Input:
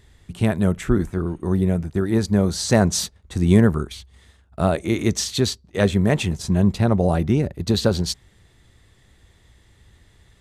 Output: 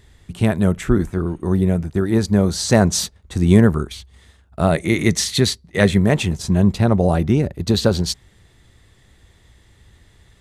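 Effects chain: 4.70–5.99 s: graphic EQ with 31 bands 160 Hz +8 dB, 2 kHz +9 dB, 4 kHz +3 dB, 10 kHz +7 dB; trim +2.5 dB

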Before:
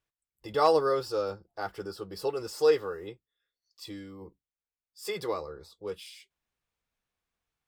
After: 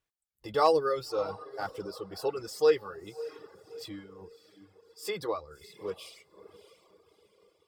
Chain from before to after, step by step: echo that smears into a reverb 620 ms, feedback 43%, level -13.5 dB; reverb removal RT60 1.1 s

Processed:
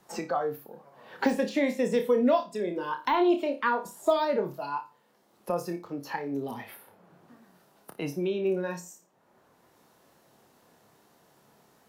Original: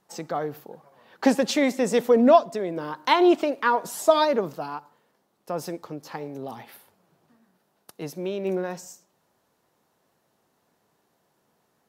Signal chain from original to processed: de-esser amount 80%; spectral noise reduction 10 dB; flutter echo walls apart 4.9 m, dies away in 0.24 s; three bands compressed up and down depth 70%; trim -4 dB

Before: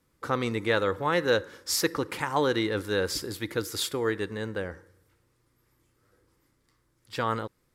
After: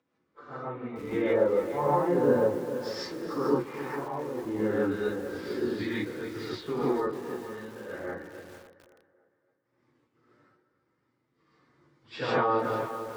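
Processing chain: gate -59 dBFS, range -44 dB; Bessel high-pass 150 Hz, order 6; low-pass that closes with the level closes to 600 Hz, closed at -22 dBFS; treble shelf 2.7 kHz -7.5 dB; upward compressor, threshold -32 dBFS; trance gate "....xx.xxx.x.x" 103 bpm -12 dB; plain phase-vocoder stretch 1.7×; distance through air 130 m; tape echo 277 ms, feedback 49%, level -12 dB, low-pass 4.4 kHz; gated-style reverb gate 180 ms rising, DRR -8 dB; bit-crushed delay 449 ms, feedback 35%, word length 7-bit, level -11 dB

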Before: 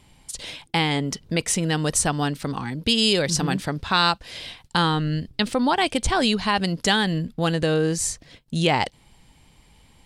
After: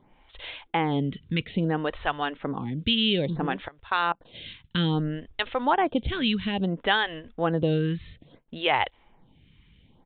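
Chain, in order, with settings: 3.68–4.34 s: level held to a coarse grid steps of 22 dB; resampled via 8 kHz; lamp-driven phase shifter 0.6 Hz

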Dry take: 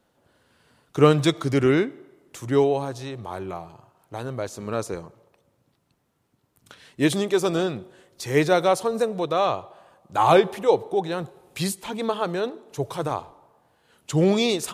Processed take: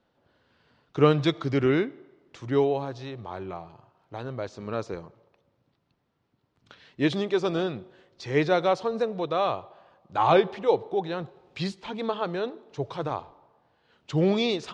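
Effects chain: low-pass 5 kHz 24 dB/octave; trim -3.5 dB

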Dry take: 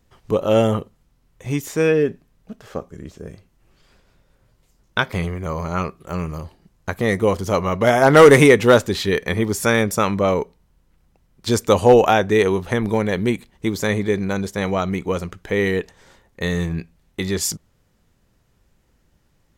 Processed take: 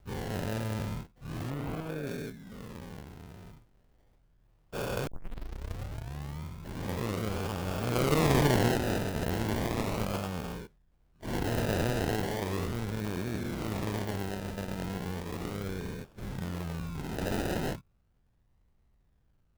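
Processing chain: every event in the spectrogram widened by 480 ms; amplifier tone stack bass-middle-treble 6-0-2; decimation with a swept rate 31×, swing 60% 0.36 Hz; 1.50–2.07 s: distance through air 250 m; 5.07 s: tape start 1.34 s; sampling jitter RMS 0.021 ms

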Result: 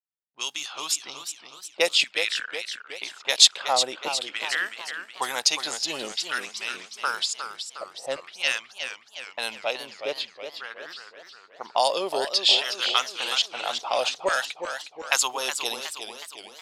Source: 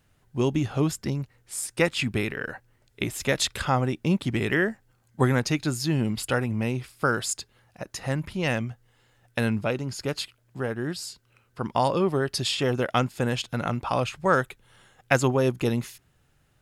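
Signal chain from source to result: level-controlled noise filter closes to 360 Hz, open at -19.5 dBFS; gate -52 dBFS, range -16 dB; resonant high shelf 2.5 kHz +14 dB, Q 1.5, from 3.60 s +7.5 dB, from 4.66 s +13.5 dB; LFO high-pass saw down 0.49 Hz 520–1700 Hz; peaking EQ 69 Hz -10.5 dB 0.87 oct; modulated delay 365 ms, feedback 53%, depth 140 cents, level -8.5 dB; trim -3.5 dB

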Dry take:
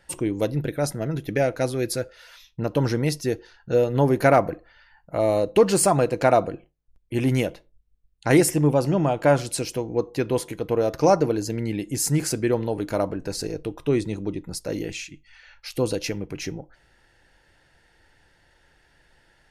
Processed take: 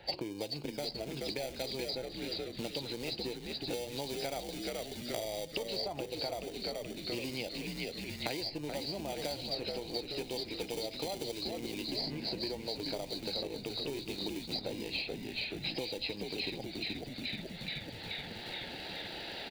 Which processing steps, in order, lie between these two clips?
knee-point frequency compression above 3.7 kHz 4:1; in parallel at -10 dB: sample-and-hold 33×; on the sum: high-order bell 1.4 kHz -12.5 dB 1.1 oct; compression, threshold -25 dBFS, peak gain reduction 14.5 dB; high-pass 220 Hz 6 dB/octave; bass shelf 470 Hz -12 dB; frequency-shifting echo 428 ms, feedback 53%, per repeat -81 Hz, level -5 dB; three bands compressed up and down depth 100%; trim -3.5 dB

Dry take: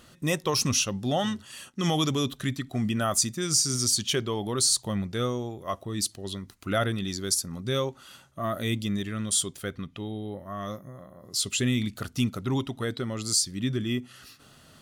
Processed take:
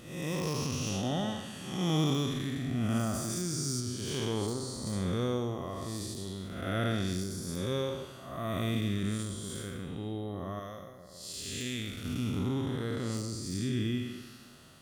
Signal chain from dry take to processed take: spectral blur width 301 ms; 10.59–12.05 s: graphic EQ 125/250/1000 Hz -8/-7/-5 dB; plate-style reverb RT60 1.8 s, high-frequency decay 0.65×, DRR 12 dB; de-esser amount 85%; 3.13–3.79 s: treble shelf 7 kHz -> 4.9 kHz +9 dB

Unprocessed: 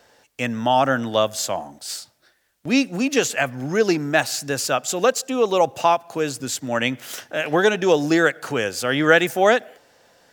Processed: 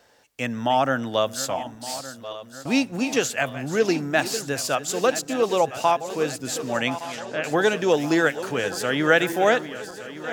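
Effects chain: backward echo that repeats 583 ms, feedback 73%, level -13 dB; 6.99–7.44 s: low-pass that closes with the level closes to 2.6 kHz, closed at -19.5 dBFS; trim -3 dB

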